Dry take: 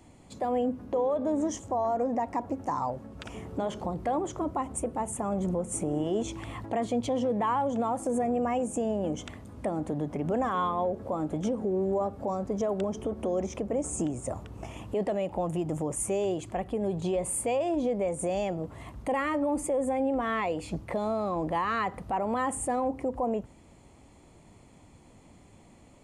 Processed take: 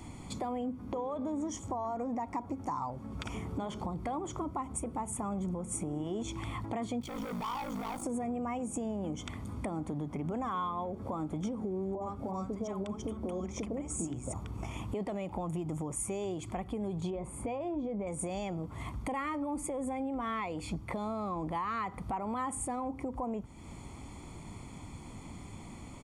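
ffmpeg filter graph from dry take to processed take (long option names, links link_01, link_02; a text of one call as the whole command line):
ffmpeg -i in.wav -filter_complex "[0:a]asettb=1/sr,asplit=3[link_01][link_02][link_03];[link_01]atrim=end=7.014[link_04];[link_02]atrim=start=7.01:end=8.03,asetpts=PTS-STARTPTS,afade=type=in:duration=0.004:curve=qsin,afade=type=out:start_time=1.016:duration=0.004:curve=qsin,acrusher=bits=3:mode=log:mix=0:aa=0.000001,aeval=exprs='val(0)*sin(2*PI*27*n/s)':channel_layout=same,asoftclip=type=hard:threshold=-33.5dB[link_05];[link_03]atrim=start=8.026[link_06];[link_04][link_05]acrossfade=duration=0.004:curve1=hsin:curve2=qsin[link_07];[link_07][link_06]acrossfade=duration=0.004:curve1=qsin:curve2=hsin,asettb=1/sr,asplit=3[link_08][link_09][link_10];[link_08]atrim=end=11.954[link_11];[link_09]atrim=start=11.95:end=14.34,asetpts=PTS-STARTPTS,afade=type=in:duration=0.004:curve=qsin,afade=type=out:start_time=2.386:duration=0.004:curve=qsin,bandreject=frequency=50:width_type=h:width=6,bandreject=frequency=100:width_type=h:width=6,bandreject=frequency=150:width_type=h:width=6,bandreject=frequency=200:width_type=h:width=6,bandreject=frequency=250:width_type=h:width=6,bandreject=frequency=300:width_type=h:width=6,bandreject=frequency=350:width_type=h:width=6,bandreject=frequency=400:width_type=h:width=6,acrossover=split=860[link_12][link_13];[link_13]adelay=60[link_14];[link_12][link_14]amix=inputs=2:normalize=0,atrim=end_sample=105399[link_15];[link_10]atrim=start=14.336[link_16];[link_11][link_15]acrossfade=duration=0.004:curve1=hsin:curve2=qsin[link_17];[link_17][link_16]acrossfade=duration=0.004:curve1=qsin:curve2=hsin,asettb=1/sr,asplit=3[link_18][link_19][link_20];[link_18]atrim=end=17.104[link_21];[link_19]atrim=start=17.1:end=18.07,asetpts=PTS-STARTPTS,afade=type=in:duration=0.004:curve=qsin,afade=type=out:start_time=0.966:duration=0.004:curve=qsin,lowpass=frequency=1000:poles=1,asplit=2[link_22][link_23];[link_23]adelay=14,volume=-13dB[link_24];[link_22][link_24]amix=inputs=2:normalize=0,atrim=end_sample=42777[link_25];[link_20]atrim=start=18.066[link_26];[link_21][link_25]acrossfade=duration=0.004:curve1=hsin:curve2=qsin[link_27];[link_27][link_26]acrossfade=duration=0.004:curve1=qsin:curve2=hsin,aecho=1:1:0.9:0.46,acompressor=threshold=-45dB:ratio=3,volume=7dB" out.wav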